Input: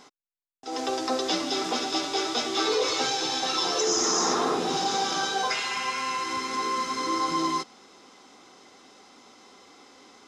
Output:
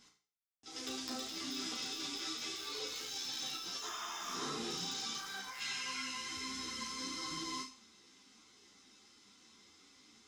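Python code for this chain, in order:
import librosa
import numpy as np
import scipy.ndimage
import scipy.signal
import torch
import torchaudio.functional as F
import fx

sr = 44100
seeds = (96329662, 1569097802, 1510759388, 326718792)

p1 = fx.spec_box(x, sr, start_s=5.17, length_s=0.42, low_hz=610.0, high_hz=2400.0, gain_db=9)
p2 = fx.tone_stack(p1, sr, knobs='6-0-2')
p3 = fx.quant_dither(p2, sr, seeds[0], bits=6, dither='none')
p4 = p2 + (p3 * librosa.db_to_amplitude(-5.5))
p5 = fx.over_compress(p4, sr, threshold_db=-48.0, ratio=-1.0)
p6 = fx.spec_repair(p5, sr, seeds[1], start_s=3.85, length_s=0.5, low_hz=620.0, high_hz=3700.0, source='after')
p7 = p6 + fx.room_flutter(p6, sr, wall_m=6.0, rt60_s=0.41, dry=0)
p8 = fx.ensemble(p7, sr)
y = p8 * librosa.db_to_amplitude(7.5)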